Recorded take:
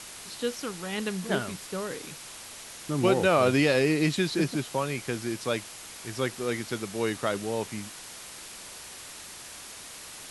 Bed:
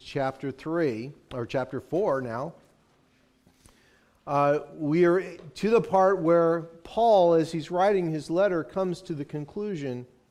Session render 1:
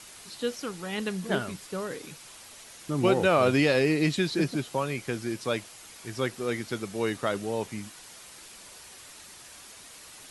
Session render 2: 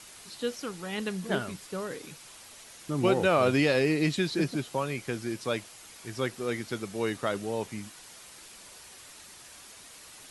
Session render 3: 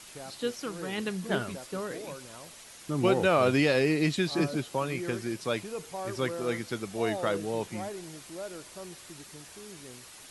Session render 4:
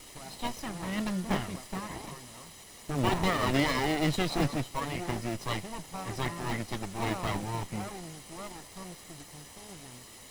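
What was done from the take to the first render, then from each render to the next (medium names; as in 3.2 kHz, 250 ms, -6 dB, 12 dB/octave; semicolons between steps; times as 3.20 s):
noise reduction 6 dB, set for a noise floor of -44 dBFS
trim -1.5 dB
add bed -16.5 dB
comb filter that takes the minimum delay 1 ms; in parallel at -6.5 dB: sample-rate reducer 1.6 kHz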